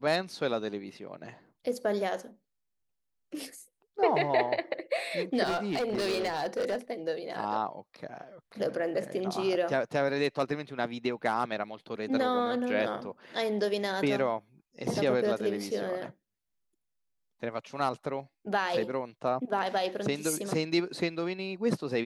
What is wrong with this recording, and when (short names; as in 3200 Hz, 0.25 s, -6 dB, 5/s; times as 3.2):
5.44–6.76 clipped -26 dBFS